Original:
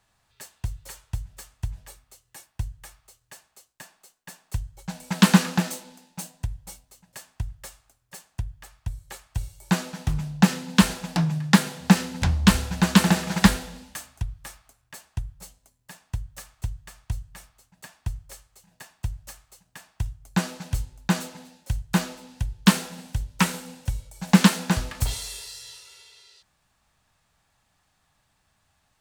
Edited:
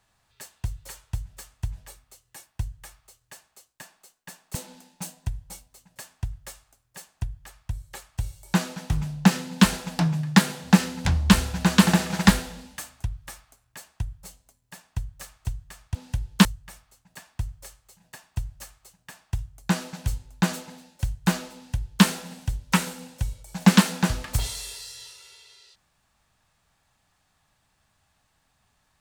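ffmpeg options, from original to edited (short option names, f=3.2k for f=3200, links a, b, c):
-filter_complex "[0:a]asplit=4[a][b][c][d];[a]atrim=end=4.552[e];[b]atrim=start=5.718:end=17.122[f];[c]atrim=start=22.218:end=22.722[g];[d]atrim=start=17.118[h];[e][f]acrossfade=d=0.004:c1=hsin:c2=hsin[i];[i][g]acrossfade=d=0.004:c1=hsin:c2=hsin[j];[j][h]acrossfade=d=0.004:c1=hsin:c2=hsin"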